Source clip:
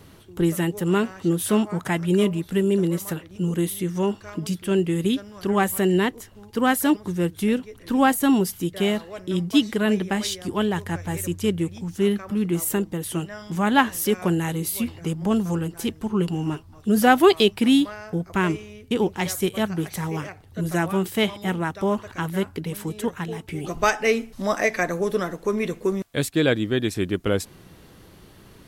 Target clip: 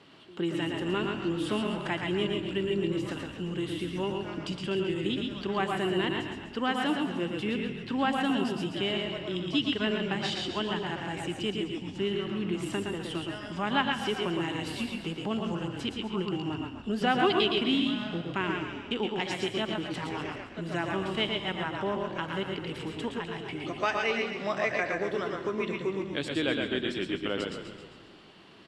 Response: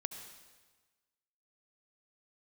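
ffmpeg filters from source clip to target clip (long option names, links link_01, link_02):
-filter_complex "[0:a]highpass=250,equalizer=frequency=480:width_type=q:width=4:gain=-4,equalizer=frequency=2900:width_type=q:width=4:gain=7,equalizer=frequency=6200:width_type=q:width=4:gain=-10,lowpass=frequency=6500:width=0.5412,lowpass=frequency=6500:width=1.3066,aecho=1:1:115:0.562,asplit=2[link_01][link_02];[1:a]atrim=start_sample=2205[link_03];[link_02][link_03]afir=irnorm=-1:irlink=0,volume=-4dB[link_04];[link_01][link_04]amix=inputs=2:normalize=0,acompressor=threshold=-26dB:ratio=1.5,asplit=2[link_05][link_06];[link_06]asplit=6[link_07][link_08][link_09][link_10][link_11][link_12];[link_07]adelay=133,afreqshift=-34,volume=-8dB[link_13];[link_08]adelay=266,afreqshift=-68,volume=-13.5dB[link_14];[link_09]adelay=399,afreqshift=-102,volume=-19dB[link_15];[link_10]adelay=532,afreqshift=-136,volume=-24.5dB[link_16];[link_11]adelay=665,afreqshift=-170,volume=-30.1dB[link_17];[link_12]adelay=798,afreqshift=-204,volume=-35.6dB[link_18];[link_13][link_14][link_15][link_16][link_17][link_18]amix=inputs=6:normalize=0[link_19];[link_05][link_19]amix=inputs=2:normalize=0,volume=-7dB"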